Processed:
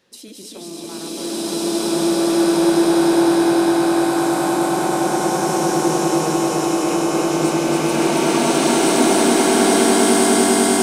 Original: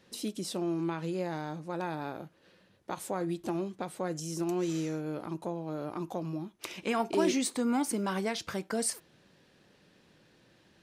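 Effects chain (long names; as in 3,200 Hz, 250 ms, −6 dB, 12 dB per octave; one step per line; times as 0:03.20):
feedback delay that plays each chunk backwards 141 ms, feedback 82%, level −1 dB
bass and treble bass −7 dB, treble +3 dB
in parallel at +0.5 dB: downward compressor, threshold −39 dBFS, peak gain reduction 17 dB
on the sum: flanger 1.9 Hz, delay 6.3 ms, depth 9.5 ms, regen −75%
on a send: echo that builds up and dies away 101 ms, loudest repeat 8, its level −9.5 dB
on the sum: slow-attack reverb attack 1,400 ms, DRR −12 dB
level −1 dB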